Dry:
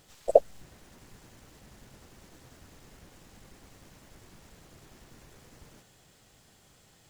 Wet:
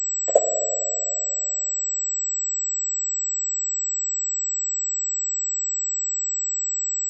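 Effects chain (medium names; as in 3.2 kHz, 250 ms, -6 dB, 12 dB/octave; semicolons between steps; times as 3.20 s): high-pass 190 Hz 12 dB/octave; treble shelf 2.4 kHz +7.5 dB; in parallel at 0 dB: compression 6:1, threshold -54 dBFS, peak gain reduction 37.5 dB; on the sum: bit crusher 6-bit; distance through air 120 m; plate-style reverb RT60 2.7 s, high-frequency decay 0.65×, DRR 4 dB; class-D stage that switches slowly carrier 7.8 kHz; trim +1.5 dB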